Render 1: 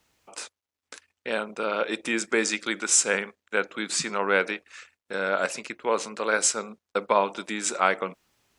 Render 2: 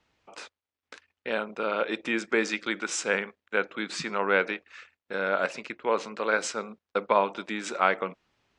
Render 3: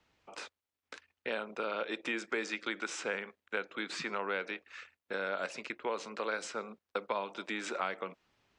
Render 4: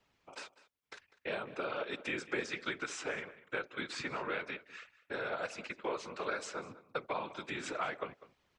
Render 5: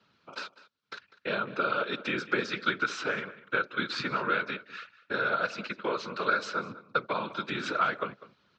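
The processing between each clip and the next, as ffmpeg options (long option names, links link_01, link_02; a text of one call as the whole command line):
ffmpeg -i in.wav -af "lowpass=3900,volume=-1dB" out.wav
ffmpeg -i in.wav -filter_complex "[0:a]acrossover=split=260|3600[link_01][link_02][link_03];[link_01]acompressor=threshold=-53dB:ratio=4[link_04];[link_02]acompressor=threshold=-32dB:ratio=4[link_05];[link_03]acompressor=threshold=-45dB:ratio=4[link_06];[link_04][link_05][link_06]amix=inputs=3:normalize=0,volume=-1.5dB" out.wav
ffmpeg -i in.wav -filter_complex "[0:a]afftfilt=real='hypot(re,im)*cos(2*PI*random(0))':imag='hypot(re,im)*sin(2*PI*random(1))':win_size=512:overlap=0.75,asplit=2[link_01][link_02];[link_02]adelay=198.3,volume=-17dB,highshelf=frequency=4000:gain=-4.46[link_03];[link_01][link_03]amix=inputs=2:normalize=0,volume=4dB" out.wav
ffmpeg -i in.wav -af "highpass=100,equalizer=frequency=130:width_type=q:width=4:gain=4,equalizer=frequency=200:width_type=q:width=4:gain=7,equalizer=frequency=770:width_type=q:width=4:gain=-6,equalizer=frequency=1400:width_type=q:width=4:gain=9,equalizer=frequency=2000:width_type=q:width=4:gain=-5,equalizer=frequency=4100:width_type=q:width=4:gain=6,lowpass=frequency=5500:width=0.5412,lowpass=frequency=5500:width=1.3066,volume=6dB" out.wav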